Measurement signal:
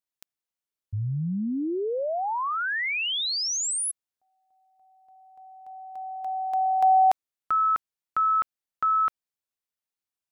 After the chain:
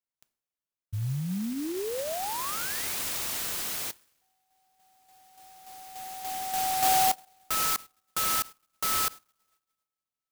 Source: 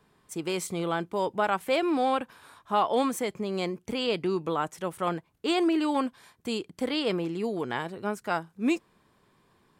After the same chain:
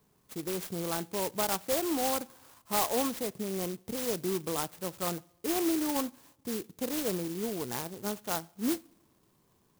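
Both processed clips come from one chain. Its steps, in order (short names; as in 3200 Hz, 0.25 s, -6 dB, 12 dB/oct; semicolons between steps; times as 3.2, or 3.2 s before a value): bell 110 Hz +2.5 dB 1.2 oct; two-slope reverb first 0.44 s, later 1.6 s, from -16 dB, DRR 19 dB; clock jitter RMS 0.14 ms; gain -4.5 dB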